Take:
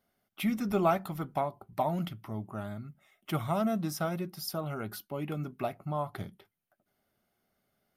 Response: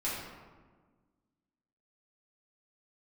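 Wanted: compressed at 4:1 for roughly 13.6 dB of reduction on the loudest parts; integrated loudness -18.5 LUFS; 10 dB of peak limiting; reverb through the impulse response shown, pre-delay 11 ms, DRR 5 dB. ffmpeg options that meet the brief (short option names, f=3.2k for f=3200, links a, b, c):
-filter_complex "[0:a]acompressor=threshold=-39dB:ratio=4,alimiter=level_in=11.5dB:limit=-24dB:level=0:latency=1,volume=-11.5dB,asplit=2[a][b];[1:a]atrim=start_sample=2205,adelay=11[c];[b][c]afir=irnorm=-1:irlink=0,volume=-10.5dB[d];[a][d]amix=inputs=2:normalize=0,volume=25.5dB"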